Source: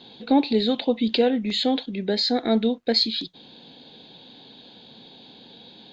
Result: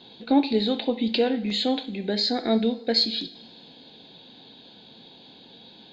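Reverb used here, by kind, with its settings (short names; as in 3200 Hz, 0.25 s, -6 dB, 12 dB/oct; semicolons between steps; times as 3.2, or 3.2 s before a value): two-slope reverb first 0.48 s, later 2.3 s, from -18 dB, DRR 8 dB; gain -2 dB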